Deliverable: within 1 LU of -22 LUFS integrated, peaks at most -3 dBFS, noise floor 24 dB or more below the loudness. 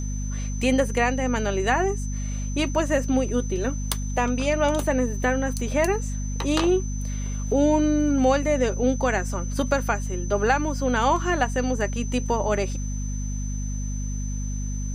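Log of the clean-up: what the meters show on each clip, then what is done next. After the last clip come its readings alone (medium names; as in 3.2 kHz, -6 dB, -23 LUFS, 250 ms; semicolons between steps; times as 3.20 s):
hum 50 Hz; highest harmonic 250 Hz; hum level -26 dBFS; steady tone 6.1 kHz; tone level -39 dBFS; loudness -24.5 LUFS; peak level -7.0 dBFS; loudness target -22.0 LUFS
-> hum notches 50/100/150/200/250 Hz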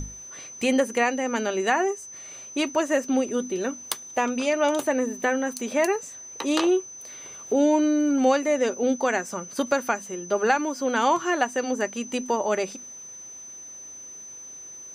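hum not found; steady tone 6.1 kHz; tone level -39 dBFS
-> band-stop 6.1 kHz, Q 30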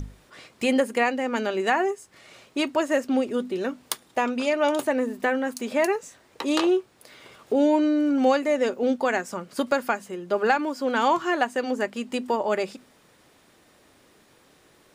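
steady tone not found; loudness -25.0 LUFS; peak level -7.0 dBFS; loudness target -22.0 LUFS
-> trim +3 dB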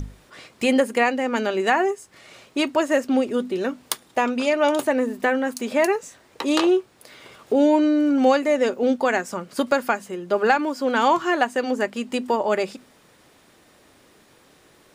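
loudness -22.0 LUFS; peak level -4.0 dBFS; noise floor -56 dBFS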